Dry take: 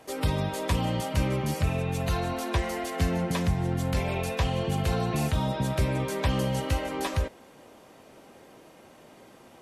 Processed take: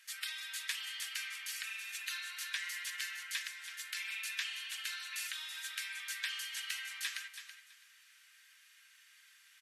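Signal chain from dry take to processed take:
elliptic high-pass filter 1,600 Hz, stop band 70 dB
repeating echo 329 ms, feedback 20%, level −10.5 dB
level −1.5 dB

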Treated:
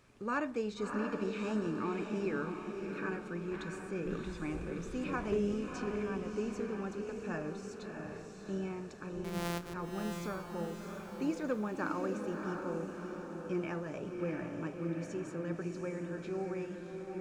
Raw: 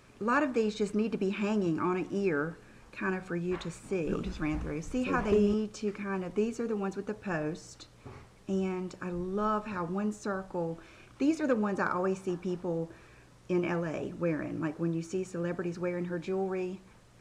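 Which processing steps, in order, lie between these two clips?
0:09.24–0:09.74: samples sorted by size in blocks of 256 samples
feedback delay with all-pass diffusion 660 ms, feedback 52%, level −4.5 dB
level −7 dB

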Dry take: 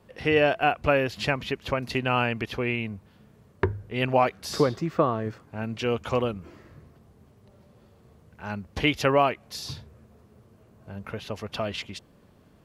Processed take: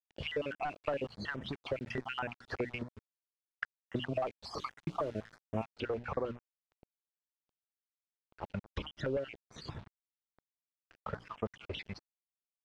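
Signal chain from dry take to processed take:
time-frequency cells dropped at random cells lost 58%
low-shelf EQ 240 Hz −7 dB
mains-hum notches 60/120/180/240/300 Hz
leveller curve on the samples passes 2
downward compressor 12 to 1, threshold −31 dBFS, peak gain reduction 16.5 dB
pitch vibrato 1.5 Hz 47 cents
bit-depth reduction 8 bits, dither none
head-to-tape spacing loss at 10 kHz 28 dB, from 0:04.53 at 10 kHz 22 dB, from 0:05.62 at 10 kHz 35 dB
notch on a step sequencer 9.6 Hz 200–4,300 Hz
level +2 dB

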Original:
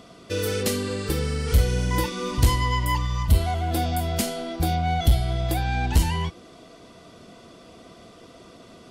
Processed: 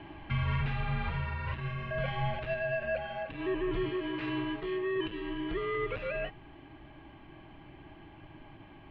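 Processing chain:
speech leveller within 4 dB 0.5 s
brickwall limiter −19 dBFS, peak gain reduction 10 dB
single-sideband voice off tune −360 Hz 330–3,100 Hz
0:03.89–0:04.96: low-shelf EQ 140 Hz −12 dB

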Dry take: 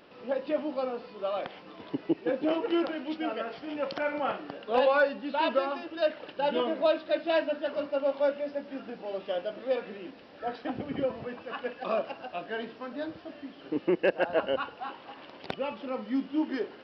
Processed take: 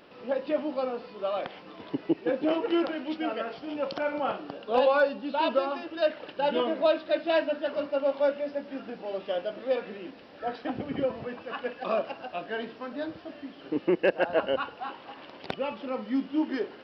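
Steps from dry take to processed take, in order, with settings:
0:03.53–0:05.74: parametric band 1,900 Hz −6.5 dB 0.58 octaves
level +1.5 dB

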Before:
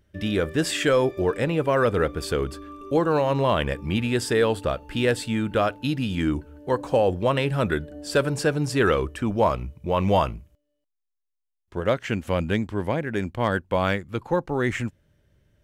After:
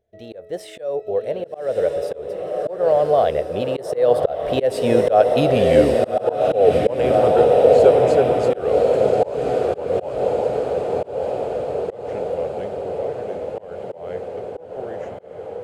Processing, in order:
source passing by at 0:05.35, 31 m/s, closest 20 metres
flat-topped bell 560 Hz +16 dB 1.2 octaves
on a send: feedback delay with all-pass diffusion 1,156 ms, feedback 64%, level −4 dB
on the sum: volume swells 234 ms
level +4 dB

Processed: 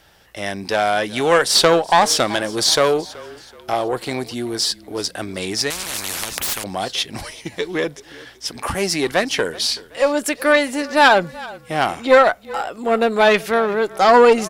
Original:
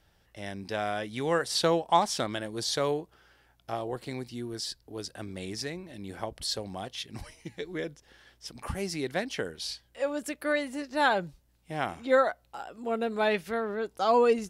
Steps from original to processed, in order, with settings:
one-sided soft clipper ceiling −24 dBFS
low-shelf EQ 230 Hz −10.5 dB
on a send: echo with shifted repeats 377 ms, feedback 40%, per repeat −31 Hz, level −20.5 dB
on the sum: boost into a limiter +17.5 dB
0:05.70–0:06.64: every bin compressed towards the loudest bin 10 to 1
level −1 dB

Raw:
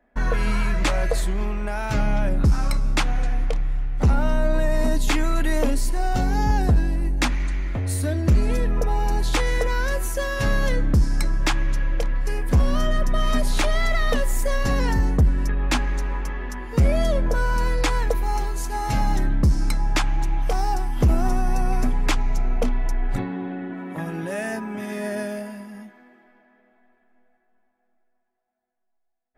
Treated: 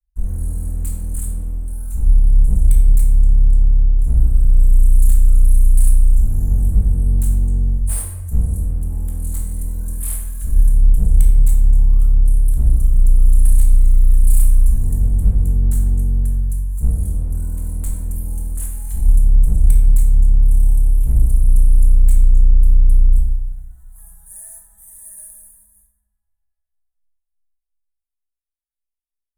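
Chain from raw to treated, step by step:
sound drawn into the spectrogram rise, 0:11.67–0:12.07, 680–1,400 Hz −27 dBFS
octave-band graphic EQ 125/250/500/1,000/2,000/4,000/8,000 Hz +9/−12/−8/+5/+6/+3/+9 dB
leveller curve on the samples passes 2
inverse Chebyshev band-stop filter 120–5,500 Hz, stop band 40 dB
asymmetric clip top −23.5 dBFS, bottom −7.5 dBFS
rectangular room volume 380 cubic metres, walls mixed, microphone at 1.6 metres
level −2.5 dB

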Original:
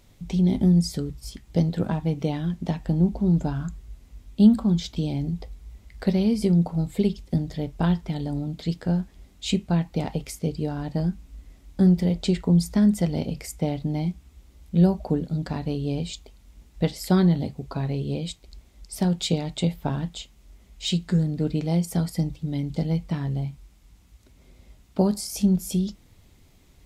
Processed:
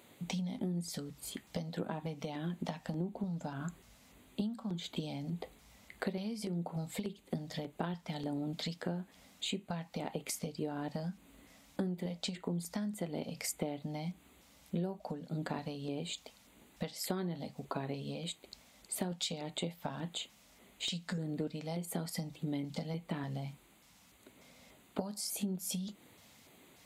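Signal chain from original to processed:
high-pass filter 260 Hz 12 dB per octave
downward compressor 12 to 1, threshold −36 dBFS, peak gain reduction 21 dB
auto-filter notch square 1.7 Hz 360–5,400 Hz
level +3 dB

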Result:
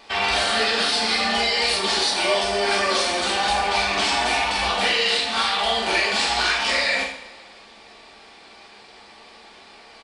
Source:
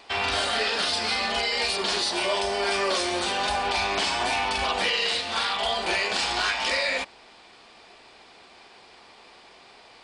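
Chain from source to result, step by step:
far-end echo of a speakerphone 190 ms, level −30 dB
pitch vibrato 15 Hz 27 cents
coupled-rooms reverb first 0.52 s, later 2 s, from −19 dB, DRR −2.5 dB

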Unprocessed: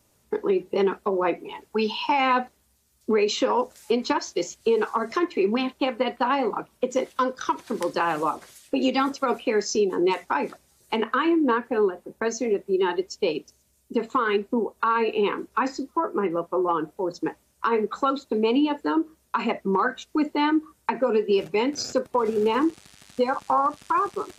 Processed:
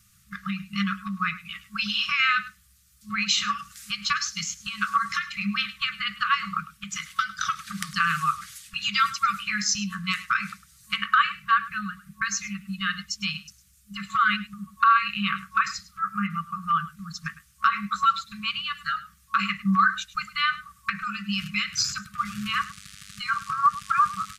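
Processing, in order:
brick-wall band-stop 210–1,100 Hz
on a send: single-tap delay 104 ms −17 dB
on the sum: level +6 dB

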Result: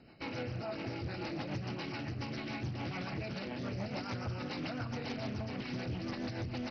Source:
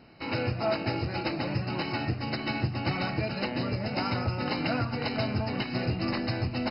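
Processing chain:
brickwall limiter −27 dBFS, peak gain reduction 9.5 dB
rotating-speaker cabinet horn 7 Hz
highs frequency-modulated by the lows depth 0.3 ms
level −2 dB

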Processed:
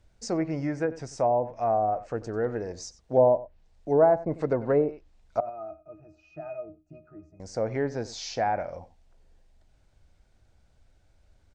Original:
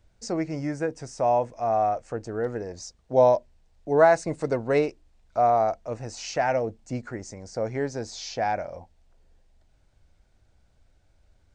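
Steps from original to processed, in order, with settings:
0:05.40–0:07.40: resonances in every octave D#, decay 0.2 s
slap from a distant wall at 16 metres, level −17 dB
treble cut that deepens with the level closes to 720 Hz, closed at −18.5 dBFS

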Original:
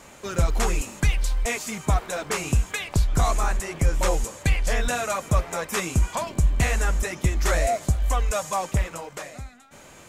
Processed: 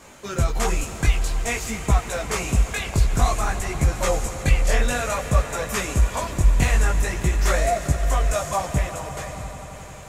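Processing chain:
multi-voice chorus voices 2, 0.53 Hz, delay 18 ms, depth 4.3 ms
echo that builds up and dies away 88 ms, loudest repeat 5, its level −17.5 dB
level +4 dB

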